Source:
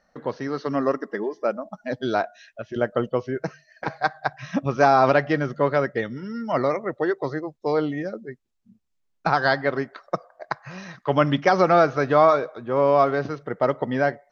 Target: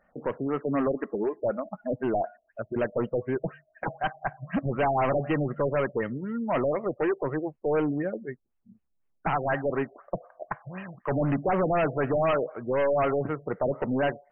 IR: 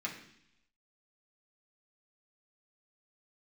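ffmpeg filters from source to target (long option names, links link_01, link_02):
-af "volume=21.5dB,asoftclip=hard,volume=-21.5dB,afftfilt=real='re*lt(b*sr/1024,740*pow(3200/740,0.5+0.5*sin(2*PI*4*pts/sr)))':imag='im*lt(b*sr/1024,740*pow(3200/740,0.5+0.5*sin(2*PI*4*pts/sr)))':win_size=1024:overlap=0.75"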